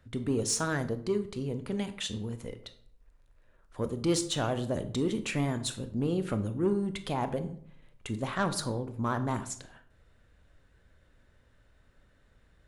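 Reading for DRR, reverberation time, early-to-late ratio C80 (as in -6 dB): 9.5 dB, 0.60 s, 17.0 dB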